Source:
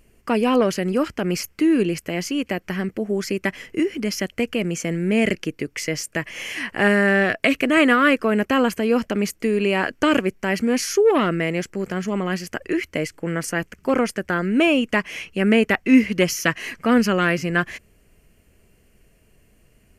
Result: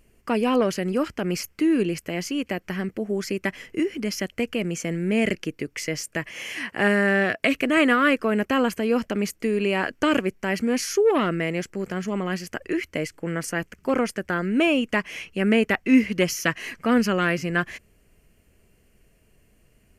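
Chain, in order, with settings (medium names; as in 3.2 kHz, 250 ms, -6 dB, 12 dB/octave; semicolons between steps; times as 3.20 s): 6.29–7.42 s: high-pass 83 Hz; trim -3 dB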